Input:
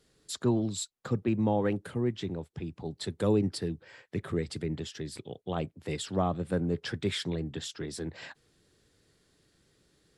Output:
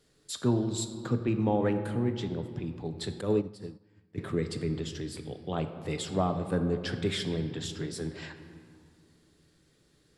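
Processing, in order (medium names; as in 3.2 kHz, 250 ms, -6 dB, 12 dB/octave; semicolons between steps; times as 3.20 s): on a send at -7 dB: reverberation RT60 2.3 s, pre-delay 7 ms; 3.21–4.18 s: on the sum: upward expansion 2.5:1, over -38 dBFS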